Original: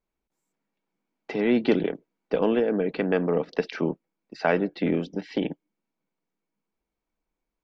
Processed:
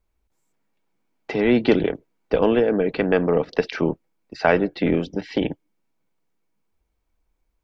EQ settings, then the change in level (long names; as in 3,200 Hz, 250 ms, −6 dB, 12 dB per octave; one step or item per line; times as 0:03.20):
low shelf with overshoot 130 Hz +9.5 dB, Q 1.5
+5.5 dB